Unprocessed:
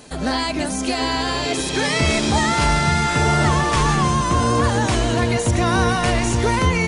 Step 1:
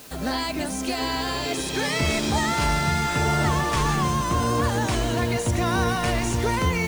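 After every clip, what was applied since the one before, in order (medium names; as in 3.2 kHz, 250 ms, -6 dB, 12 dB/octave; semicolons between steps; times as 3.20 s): added noise white -41 dBFS; trim -5 dB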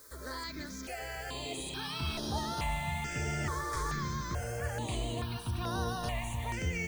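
peaking EQ 250 Hz -4.5 dB 2 oct; stepped phaser 2.3 Hz 750–7600 Hz; trim -8.5 dB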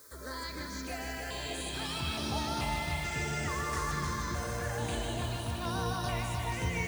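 high-pass 53 Hz; multi-head delay 153 ms, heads first and second, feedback 63%, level -8 dB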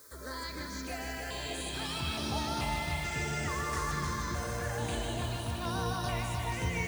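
no audible change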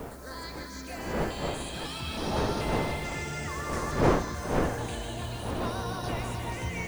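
wind noise 610 Hz -32 dBFS; trim -1 dB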